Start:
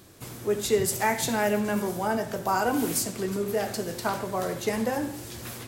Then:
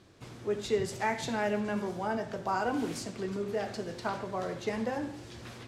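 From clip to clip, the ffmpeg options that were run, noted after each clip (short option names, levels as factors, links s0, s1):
-af "lowpass=4900,volume=0.531"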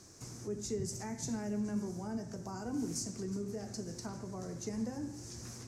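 -filter_complex "[0:a]equalizer=f=560:w=3.8:g=-2.5,acrossover=split=310[s0][s1];[s1]acompressor=threshold=0.00112:ratio=2[s2];[s0][s2]amix=inputs=2:normalize=0,highshelf=f=4500:t=q:w=3:g=10.5"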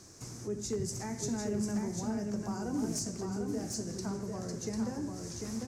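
-af "aeval=exprs='0.0355*(abs(mod(val(0)/0.0355+3,4)-2)-1)':c=same,aecho=1:1:747:0.596,volume=1.33"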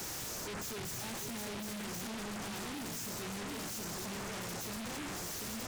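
-af "asoftclip=type=tanh:threshold=0.0119,alimiter=level_in=20:limit=0.0631:level=0:latency=1,volume=0.0501,aeval=exprs='0.00316*sin(PI/2*3.55*val(0)/0.00316)':c=same,volume=3.76"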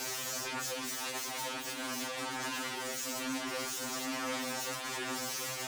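-filter_complex "[0:a]afreqshift=71,asplit=2[s0][s1];[s1]highpass=f=720:p=1,volume=3.55,asoftclip=type=tanh:threshold=0.0398[s2];[s0][s2]amix=inputs=2:normalize=0,lowpass=f=6400:p=1,volume=0.501,afftfilt=real='re*2.45*eq(mod(b,6),0)':imag='im*2.45*eq(mod(b,6),0)':win_size=2048:overlap=0.75,volume=1.58"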